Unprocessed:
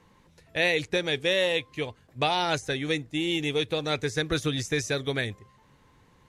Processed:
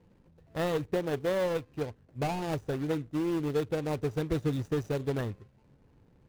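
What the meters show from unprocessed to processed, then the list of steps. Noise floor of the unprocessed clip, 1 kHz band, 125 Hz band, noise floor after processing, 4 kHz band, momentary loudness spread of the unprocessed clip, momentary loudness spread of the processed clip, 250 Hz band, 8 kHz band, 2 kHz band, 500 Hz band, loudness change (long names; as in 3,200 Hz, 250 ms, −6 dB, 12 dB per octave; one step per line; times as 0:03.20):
−60 dBFS, −6.0 dB, 0.0 dB, −63 dBFS, −17.5 dB, 7 LU, 8 LU, −0.5 dB, −12.0 dB, −13.5 dB, −2.5 dB, −5.0 dB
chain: running median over 41 samples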